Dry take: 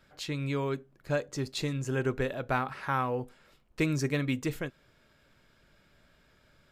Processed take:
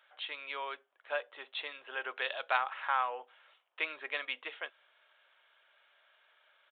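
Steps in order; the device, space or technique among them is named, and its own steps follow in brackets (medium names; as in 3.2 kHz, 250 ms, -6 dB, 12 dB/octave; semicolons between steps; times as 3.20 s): 2.16–2.57 s: peaking EQ 5.3 kHz +15 dB 1.3 oct; musical greeting card (resampled via 8 kHz; high-pass 670 Hz 24 dB/octave; peaking EQ 3.1 kHz +5 dB 0.28 oct)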